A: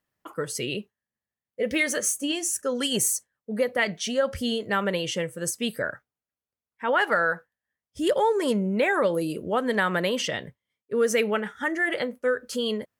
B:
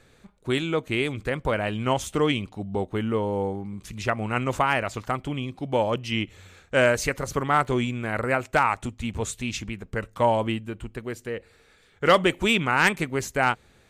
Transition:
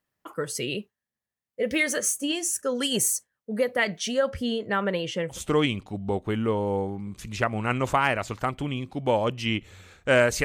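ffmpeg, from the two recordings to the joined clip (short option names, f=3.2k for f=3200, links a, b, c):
-filter_complex "[0:a]asettb=1/sr,asplit=3[a][b][c];[a]atrim=end=4.304[d];[b]atrim=start=4.3:end=5.41,asetpts=PTS-STARTPTS,afade=t=in:d=0.004:c=qsin,afade=t=out:st=1.106:d=0.004:c=qsin,highshelf=f=5k:g=-12[e];[c]atrim=start=5.406[f];[d][e]acrossfade=d=0.004:c1=hsin:c2=qsin[g];[g][f]acrossfade=d=0.004:c1=qsin:c2=hsin,apad=whole_dur=10.44,atrim=end=10.44,atrim=end=5.41,asetpts=PTS-STARTPTS[h];[1:a]atrim=start=1.95:end=7.1,asetpts=PTS-STARTPTS[i];[h][i]acrossfade=d=0.12:c1=tri:c2=tri"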